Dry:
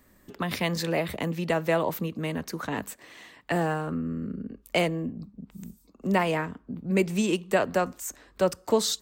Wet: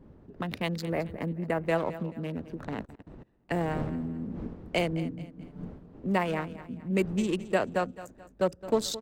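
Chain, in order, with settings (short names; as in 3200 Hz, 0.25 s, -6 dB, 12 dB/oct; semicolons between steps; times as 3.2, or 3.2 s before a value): Wiener smoothing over 41 samples; wind noise 280 Hz -44 dBFS; 0.84–1.66 band shelf 4600 Hz -9.5 dB; 4.92–5.65 comb 6.8 ms, depth 83%; feedback echo 0.216 s, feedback 37%, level -15.5 dB; 2.83–3.51 level quantiser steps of 22 dB; gain -2.5 dB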